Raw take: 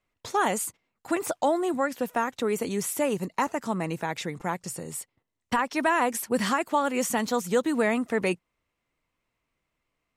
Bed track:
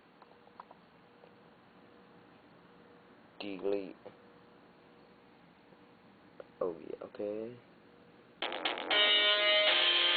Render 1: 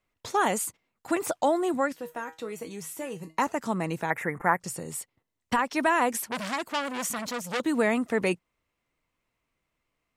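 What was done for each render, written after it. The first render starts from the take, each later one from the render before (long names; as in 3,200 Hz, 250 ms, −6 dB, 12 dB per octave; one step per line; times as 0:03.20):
0:01.92–0:03.38: tuned comb filter 160 Hz, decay 0.22 s, mix 80%
0:04.10–0:04.60: drawn EQ curve 260 Hz 0 dB, 1,900 Hz +11 dB, 3,100 Hz −16 dB, 4,400 Hz −26 dB, 11,000 Hz +4 dB
0:06.18–0:07.60: saturating transformer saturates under 2,900 Hz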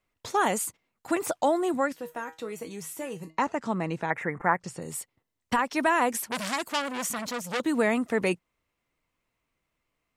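0:03.30–0:04.82: high-frequency loss of the air 80 metres
0:06.30–0:06.82: parametric band 11,000 Hz +7.5 dB 2.1 octaves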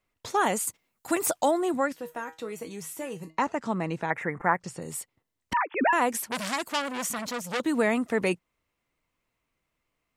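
0:00.67–0:01.51: high-shelf EQ 5,800 Hz +10.5 dB
0:05.53–0:05.93: three sine waves on the formant tracks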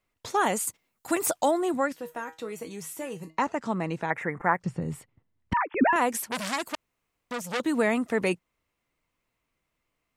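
0:04.64–0:05.96: bass and treble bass +12 dB, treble −14 dB
0:06.75–0:07.31: fill with room tone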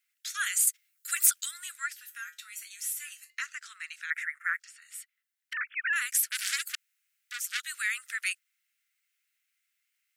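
Butterworth high-pass 1,400 Hz 72 dB per octave
high-shelf EQ 5,900 Hz +9 dB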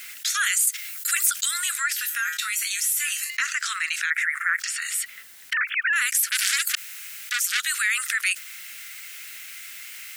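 envelope flattener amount 70%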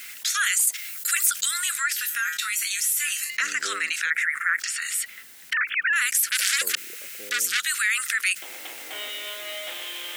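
mix in bed track −8 dB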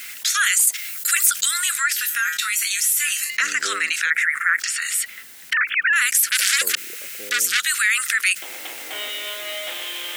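level +4.5 dB
brickwall limiter −1 dBFS, peak gain reduction 1.5 dB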